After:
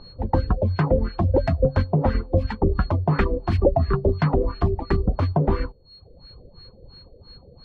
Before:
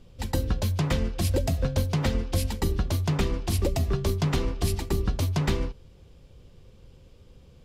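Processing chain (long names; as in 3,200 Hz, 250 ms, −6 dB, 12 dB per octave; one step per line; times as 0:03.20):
steady tone 4,300 Hz −33 dBFS
auto-filter low-pass sine 2.9 Hz 530–1,700 Hz
reverb reduction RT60 0.83 s
level +5.5 dB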